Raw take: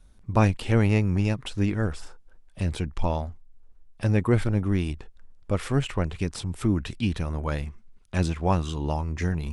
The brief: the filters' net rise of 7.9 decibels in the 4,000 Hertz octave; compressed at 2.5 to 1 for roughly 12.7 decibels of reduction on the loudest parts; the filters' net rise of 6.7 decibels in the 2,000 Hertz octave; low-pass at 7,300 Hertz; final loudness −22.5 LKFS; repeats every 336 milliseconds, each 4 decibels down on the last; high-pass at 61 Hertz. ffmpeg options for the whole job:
ffmpeg -i in.wav -af "highpass=61,lowpass=7300,equalizer=frequency=2000:width_type=o:gain=6,equalizer=frequency=4000:width_type=o:gain=8.5,acompressor=threshold=-35dB:ratio=2.5,aecho=1:1:336|672|1008|1344|1680|2016|2352|2688|3024:0.631|0.398|0.25|0.158|0.0994|0.0626|0.0394|0.0249|0.0157,volume=12dB" out.wav

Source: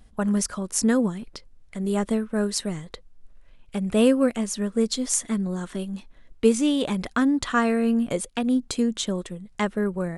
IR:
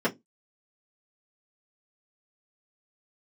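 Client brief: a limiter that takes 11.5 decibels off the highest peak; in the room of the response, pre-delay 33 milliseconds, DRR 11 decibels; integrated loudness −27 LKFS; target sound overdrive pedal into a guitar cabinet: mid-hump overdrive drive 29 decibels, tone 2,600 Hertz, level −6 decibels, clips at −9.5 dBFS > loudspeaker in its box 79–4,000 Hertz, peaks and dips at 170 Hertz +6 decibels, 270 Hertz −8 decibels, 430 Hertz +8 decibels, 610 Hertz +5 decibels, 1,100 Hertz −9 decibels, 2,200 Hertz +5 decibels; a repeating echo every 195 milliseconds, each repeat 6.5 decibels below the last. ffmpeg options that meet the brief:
-filter_complex "[0:a]alimiter=limit=-16dB:level=0:latency=1,aecho=1:1:195|390|585|780|975|1170:0.473|0.222|0.105|0.0491|0.0231|0.0109,asplit=2[link_01][link_02];[1:a]atrim=start_sample=2205,adelay=33[link_03];[link_02][link_03]afir=irnorm=-1:irlink=0,volume=-23dB[link_04];[link_01][link_04]amix=inputs=2:normalize=0,asplit=2[link_05][link_06];[link_06]highpass=frequency=720:poles=1,volume=29dB,asoftclip=type=tanh:threshold=-9.5dB[link_07];[link_05][link_07]amix=inputs=2:normalize=0,lowpass=frequency=2600:poles=1,volume=-6dB,highpass=79,equalizer=frequency=170:width_type=q:width=4:gain=6,equalizer=frequency=270:width_type=q:width=4:gain=-8,equalizer=frequency=430:width_type=q:width=4:gain=8,equalizer=frequency=610:width_type=q:width=4:gain=5,equalizer=frequency=1100:width_type=q:width=4:gain=-9,equalizer=frequency=2200:width_type=q:width=4:gain=5,lowpass=frequency=4000:width=0.5412,lowpass=frequency=4000:width=1.3066,volume=-10.5dB"

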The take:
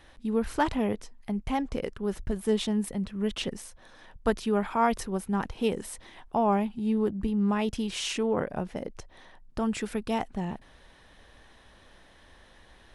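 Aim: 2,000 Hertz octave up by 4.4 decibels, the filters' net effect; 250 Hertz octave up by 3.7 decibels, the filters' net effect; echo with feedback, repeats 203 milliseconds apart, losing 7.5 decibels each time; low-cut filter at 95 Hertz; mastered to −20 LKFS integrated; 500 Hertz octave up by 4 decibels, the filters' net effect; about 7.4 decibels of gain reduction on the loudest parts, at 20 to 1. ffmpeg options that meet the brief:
ffmpeg -i in.wav -af "highpass=95,equalizer=frequency=250:width_type=o:gain=4,equalizer=frequency=500:width_type=o:gain=3.5,equalizer=frequency=2000:width_type=o:gain=5.5,acompressor=threshold=-23dB:ratio=20,aecho=1:1:203|406|609|812|1015:0.422|0.177|0.0744|0.0312|0.0131,volume=9.5dB" out.wav

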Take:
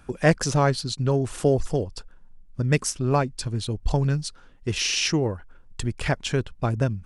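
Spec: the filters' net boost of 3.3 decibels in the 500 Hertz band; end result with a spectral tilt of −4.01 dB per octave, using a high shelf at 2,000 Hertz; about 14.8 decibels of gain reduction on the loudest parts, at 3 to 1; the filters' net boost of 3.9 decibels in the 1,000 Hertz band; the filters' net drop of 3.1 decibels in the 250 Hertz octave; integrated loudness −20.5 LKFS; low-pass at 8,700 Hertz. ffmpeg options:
ffmpeg -i in.wav -af "lowpass=8700,equalizer=frequency=250:width_type=o:gain=-7,equalizer=frequency=500:width_type=o:gain=5,equalizer=frequency=1000:width_type=o:gain=3,highshelf=frequency=2000:gain=3.5,acompressor=threshold=-32dB:ratio=3,volume=13dB" out.wav

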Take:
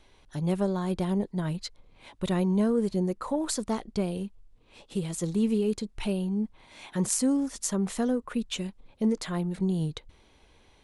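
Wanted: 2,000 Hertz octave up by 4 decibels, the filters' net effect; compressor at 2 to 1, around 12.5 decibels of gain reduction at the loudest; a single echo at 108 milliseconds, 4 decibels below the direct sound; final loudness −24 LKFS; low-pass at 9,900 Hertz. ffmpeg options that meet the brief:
ffmpeg -i in.wav -af "lowpass=9900,equalizer=frequency=2000:width_type=o:gain=5,acompressor=threshold=-45dB:ratio=2,aecho=1:1:108:0.631,volume=15dB" out.wav

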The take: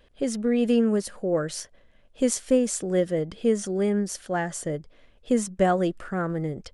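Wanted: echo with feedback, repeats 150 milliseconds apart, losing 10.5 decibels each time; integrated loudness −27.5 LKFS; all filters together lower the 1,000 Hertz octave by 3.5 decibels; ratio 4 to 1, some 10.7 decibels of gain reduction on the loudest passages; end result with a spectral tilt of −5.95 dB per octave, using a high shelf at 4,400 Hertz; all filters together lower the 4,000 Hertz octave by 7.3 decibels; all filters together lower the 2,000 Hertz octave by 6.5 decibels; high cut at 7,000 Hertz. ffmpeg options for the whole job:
ffmpeg -i in.wav -af "lowpass=7000,equalizer=frequency=1000:width_type=o:gain=-4.5,equalizer=frequency=2000:width_type=o:gain=-5,equalizer=frequency=4000:width_type=o:gain=-5,highshelf=frequency=4400:gain=-4.5,acompressor=threshold=-30dB:ratio=4,aecho=1:1:150|300|450:0.299|0.0896|0.0269,volume=6.5dB" out.wav

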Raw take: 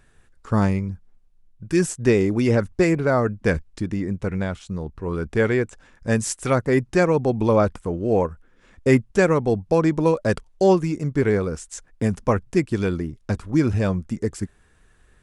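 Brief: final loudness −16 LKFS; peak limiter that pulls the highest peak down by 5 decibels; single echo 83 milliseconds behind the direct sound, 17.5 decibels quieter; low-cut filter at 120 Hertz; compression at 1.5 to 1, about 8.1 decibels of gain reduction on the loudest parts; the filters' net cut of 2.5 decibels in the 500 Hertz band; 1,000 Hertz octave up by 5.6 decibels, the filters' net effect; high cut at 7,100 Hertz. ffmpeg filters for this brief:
ffmpeg -i in.wav -af "highpass=120,lowpass=7100,equalizer=frequency=500:width_type=o:gain=-5,equalizer=frequency=1000:width_type=o:gain=8.5,acompressor=threshold=-35dB:ratio=1.5,alimiter=limit=-17dB:level=0:latency=1,aecho=1:1:83:0.133,volume=14.5dB" out.wav

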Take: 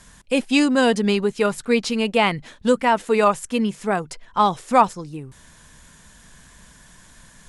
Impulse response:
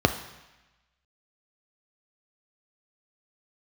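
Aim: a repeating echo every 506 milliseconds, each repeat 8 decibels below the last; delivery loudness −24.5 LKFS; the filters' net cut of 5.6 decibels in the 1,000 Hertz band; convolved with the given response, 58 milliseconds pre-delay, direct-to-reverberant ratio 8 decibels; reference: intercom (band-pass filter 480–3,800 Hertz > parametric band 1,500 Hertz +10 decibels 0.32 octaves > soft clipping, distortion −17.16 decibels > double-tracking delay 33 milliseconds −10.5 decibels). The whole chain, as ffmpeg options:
-filter_complex "[0:a]equalizer=frequency=1000:width_type=o:gain=-8.5,aecho=1:1:506|1012|1518|2024|2530:0.398|0.159|0.0637|0.0255|0.0102,asplit=2[link_01][link_02];[1:a]atrim=start_sample=2205,adelay=58[link_03];[link_02][link_03]afir=irnorm=-1:irlink=0,volume=-24dB[link_04];[link_01][link_04]amix=inputs=2:normalize=0,highpass=480,lowpass=3800,equalizer=frequency=1500:width_type=o:width=0.32:gain=10,asoftclip=threshold=-12.5dB,asplit=2[link_05][link_06];[link_06]adelay=33,volume=-10.5dB[link_07];[link_05][link_07]amix=inputs=2:normalize=0"

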